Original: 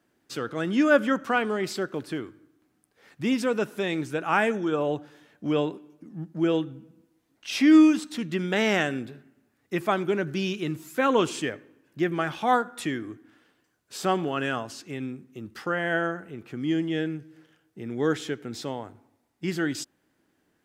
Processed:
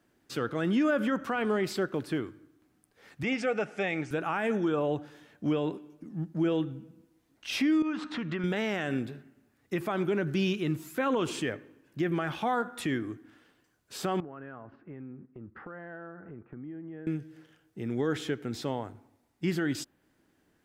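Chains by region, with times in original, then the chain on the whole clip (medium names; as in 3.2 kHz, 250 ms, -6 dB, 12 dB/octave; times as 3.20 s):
3.23–4.11 s: Butterworth band-stop 1 kHz, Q 5.9 + cabinet simulation 170–7400 Hz, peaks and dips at 240 Hz -8 dB, 360 Hz -7 dB, 750 Hz +7 dB, 2.2 kHz +7 dB, 3.9 kHz -9 dB
7.82–8.44 s: low-pass 4.3 kHz + peaking EQ 1.2 kHz +11 dB 1.6 oct + compression 4:1, threshold -31 dBFS
14.20–17.07 s: low-pass 1.7 kHz 24 dB/octave + compression 4:1, threshold -43 dBFS + gate -52 dBFS, range -8 dB
whole clip: bass shelf 83 Hz +8.5 dB; peak limiter -19.5 dBFS; dynamic bell 6.7 kHz, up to -5 dB, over -51 dBFS, Q 0.82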